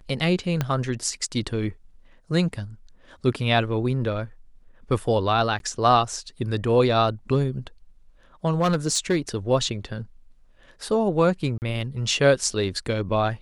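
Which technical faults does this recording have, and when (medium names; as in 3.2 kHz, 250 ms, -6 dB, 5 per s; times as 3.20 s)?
0.61 s: pop -10 dBFS
5.59–5.60 s: dropout
8.60–9.18 s: clipped -16 dBFS
11.58–11.62 s: dropout 39 ms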